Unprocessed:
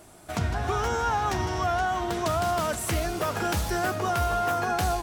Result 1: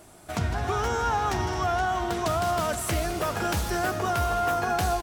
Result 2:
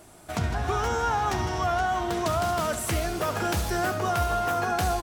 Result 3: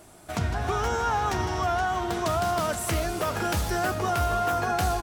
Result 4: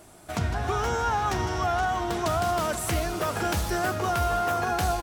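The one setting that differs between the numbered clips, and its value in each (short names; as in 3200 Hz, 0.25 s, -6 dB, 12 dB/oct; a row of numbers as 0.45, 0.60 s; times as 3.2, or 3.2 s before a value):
feedback echo, time: 213, 69, 316, 514 ms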